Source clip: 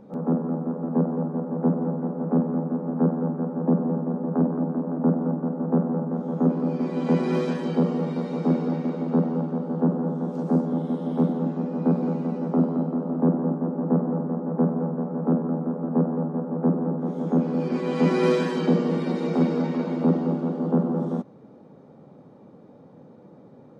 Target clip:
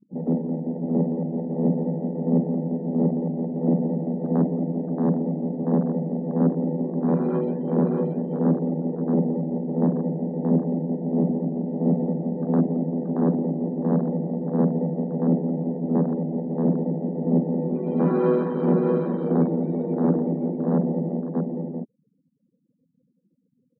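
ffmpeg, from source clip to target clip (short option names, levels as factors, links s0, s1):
-af "afftfilt=real='re*gte(hypot(re,im),0.0251)':imag='im*gte(hypot(re,im),0.0251)':win_size=1024:overlap=0.75,lowpass=4000,afwtdn=0.0398,aecho=1:1:627:0.631"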